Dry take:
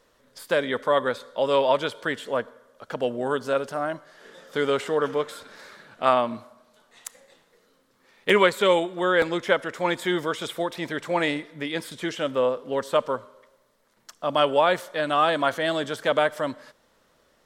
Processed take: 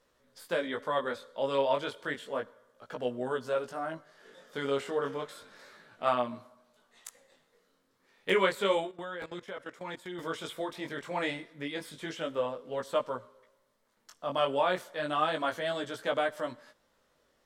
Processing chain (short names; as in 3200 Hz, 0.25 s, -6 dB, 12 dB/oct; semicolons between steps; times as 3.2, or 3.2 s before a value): chorus 0.31 Hz, delay 16 ms, depth 6 ms; 8.91–10.19 level quantiser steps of 17 dB; gain -5 dB